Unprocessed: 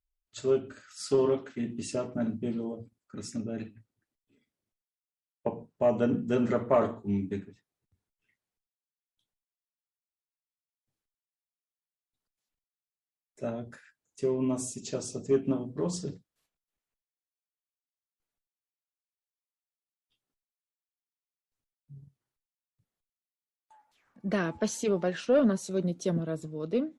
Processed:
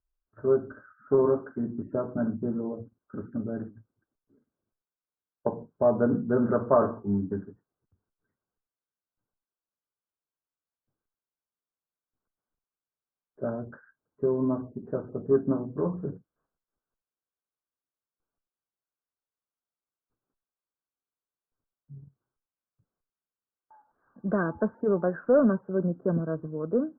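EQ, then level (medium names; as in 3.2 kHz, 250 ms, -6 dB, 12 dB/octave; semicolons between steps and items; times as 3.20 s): dynamic bell 350 Hz, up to -3 dB, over -37 dBFS, Q 0.97; rippled Chebyshev low-pass 1.6 kHz, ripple 3 dB; +5.5 dB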